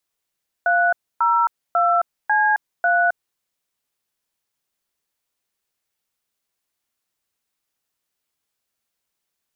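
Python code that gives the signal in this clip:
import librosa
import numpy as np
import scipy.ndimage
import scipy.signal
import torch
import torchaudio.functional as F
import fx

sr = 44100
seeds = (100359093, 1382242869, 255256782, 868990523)

y = fx.dtmf(sr, digits='302C3', tone_ms=266, gap_ms=279, level_db=-17.0)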